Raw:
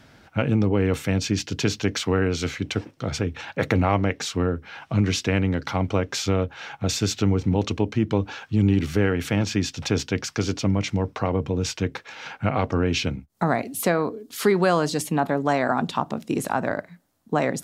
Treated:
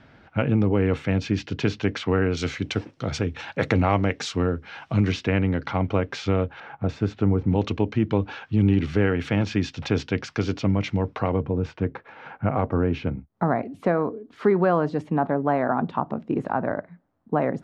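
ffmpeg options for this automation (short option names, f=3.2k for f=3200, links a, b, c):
-af "asetnsamples=n=441:p=0,asendcmd='2.37 lowpass f 6000;5.12 lowpass f 2900;6.6 lowpass f 1400;7.49 lowpass f 3400;11.42 lowpass f 1400',lowpass=2.9k"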